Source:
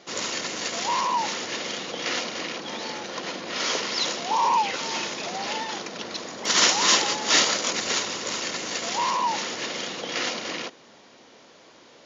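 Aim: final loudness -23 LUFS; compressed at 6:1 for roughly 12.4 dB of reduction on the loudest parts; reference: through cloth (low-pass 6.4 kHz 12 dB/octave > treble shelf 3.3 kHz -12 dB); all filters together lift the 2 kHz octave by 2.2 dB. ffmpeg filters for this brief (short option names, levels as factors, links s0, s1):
-af "equalizer=f=2000:t=o:g=6.5,acompressor=threshold=0.0501:ratio=6,lowpass=6400,highshelf=f=3300:g=-12,volume=2.99"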